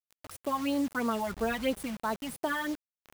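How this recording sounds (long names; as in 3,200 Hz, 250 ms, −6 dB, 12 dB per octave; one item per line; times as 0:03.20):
phaser sweep stages 12, 3 Hz, lowest notch 400–2,800 Hz
tremolo triangle 1.4 Hz, depth 35%
a quantiser's noise floor 8 bits, dither none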